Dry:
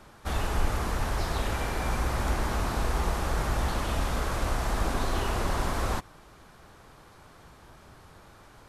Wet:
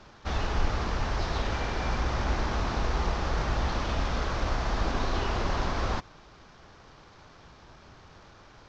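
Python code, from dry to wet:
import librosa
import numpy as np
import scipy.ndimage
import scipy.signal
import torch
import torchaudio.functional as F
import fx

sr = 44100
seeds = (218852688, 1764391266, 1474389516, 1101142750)

y = fx.cvsd(x, sr, bps=32000)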